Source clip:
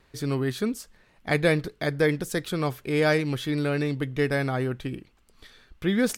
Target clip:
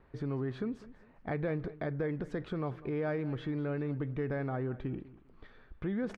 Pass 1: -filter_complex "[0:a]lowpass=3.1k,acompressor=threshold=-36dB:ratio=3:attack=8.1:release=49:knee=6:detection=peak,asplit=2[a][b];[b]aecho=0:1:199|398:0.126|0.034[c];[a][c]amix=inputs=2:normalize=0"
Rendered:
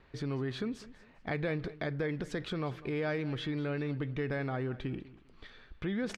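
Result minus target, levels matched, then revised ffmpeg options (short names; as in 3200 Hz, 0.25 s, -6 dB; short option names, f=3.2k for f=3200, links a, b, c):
4000 Hz band +11.0 dB
-filter_complex "[0:a]lowpass=1.4k,acompressor=threshold=-36dB:ratio=3:attack=8.1:release=49:knee=6:detection=peak,asplit=2[a][b];[b]aecho=0:1:199|398:0.126|0.034[c];[a][c]amix=inputs=2:normalize=0"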